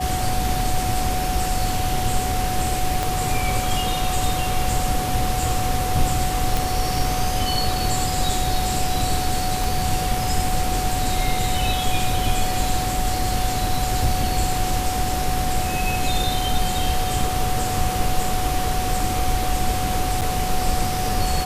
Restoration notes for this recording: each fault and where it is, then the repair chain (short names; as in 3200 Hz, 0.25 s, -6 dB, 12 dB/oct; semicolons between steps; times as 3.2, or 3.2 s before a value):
tone 740 Hz -25 dBFS
3.03 pop
6.57 pop
9.64 pop
20.21–20.22 gap 7.2 ms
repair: de-click; notch 740 Hz, Q 30; interpolate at 20.21, 7.2 ms